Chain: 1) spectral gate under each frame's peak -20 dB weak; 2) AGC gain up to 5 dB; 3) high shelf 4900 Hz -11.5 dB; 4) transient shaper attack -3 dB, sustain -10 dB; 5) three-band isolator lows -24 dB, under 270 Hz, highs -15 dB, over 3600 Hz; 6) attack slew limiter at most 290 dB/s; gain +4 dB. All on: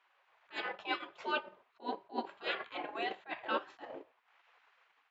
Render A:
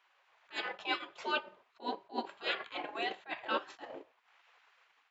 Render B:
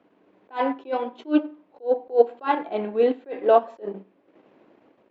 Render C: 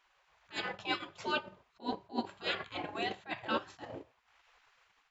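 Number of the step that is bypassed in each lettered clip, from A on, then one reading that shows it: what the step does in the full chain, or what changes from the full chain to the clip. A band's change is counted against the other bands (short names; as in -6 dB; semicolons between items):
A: 3, 4 kHz band +3.0 dB; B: 1, 2 kHz band -18.5 dB; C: 5, 250 Hz band +4.5 dB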